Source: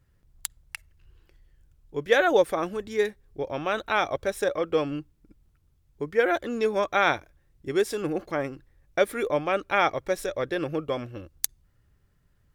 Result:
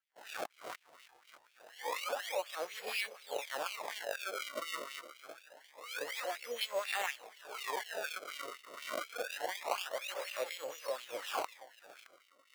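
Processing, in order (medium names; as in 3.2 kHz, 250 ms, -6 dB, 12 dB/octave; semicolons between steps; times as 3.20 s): reverse spectral sustain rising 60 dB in 0.52 s; gate with hold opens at -48 dBFS; high-order bell 1 kHz -9 dB; compression 10:1, threshold -36 dBFS, peak gain reduction 21 dB; formant shift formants +3 st; two-band feedback delay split 640 Hz, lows 356 ms, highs 618 ms, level -14 dB; decimation with a swept rate 30×, swing 160% 0.26 Hz; LFO high-pass sine 4.1 Hz 620–2800 Hz; trim +1.5 dB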